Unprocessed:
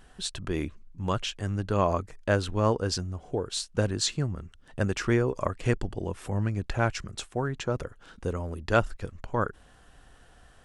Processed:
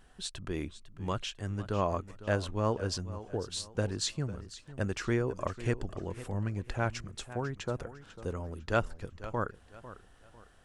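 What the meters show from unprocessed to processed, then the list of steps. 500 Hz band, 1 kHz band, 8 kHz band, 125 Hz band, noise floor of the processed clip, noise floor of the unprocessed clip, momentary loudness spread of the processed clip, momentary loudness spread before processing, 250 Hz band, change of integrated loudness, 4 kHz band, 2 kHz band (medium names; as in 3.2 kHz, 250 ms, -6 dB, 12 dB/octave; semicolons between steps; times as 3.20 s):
-5.5 dB, -5.5 dB, -5.5 dB, -5.5 dB, -58 dBFS, -56 dBFS, 12 LU, 10 LU, -5.5 dB, -5.5 dB, -5.5 dB, -5.5 dB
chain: modulated delay 500 ms, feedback 33%, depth 105 cents, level -15 dB; trim -5.5 dB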